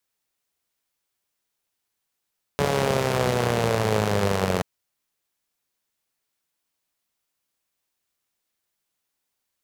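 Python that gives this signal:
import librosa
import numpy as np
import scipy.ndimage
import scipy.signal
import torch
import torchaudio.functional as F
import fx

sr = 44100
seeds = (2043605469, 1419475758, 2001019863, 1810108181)

y = fx.engine_four_rev(sr, seeds[0], length_s=2.03, rpm=4300, resonances_hz=(110.0, 180.0, 440.0), end_rpm=2700)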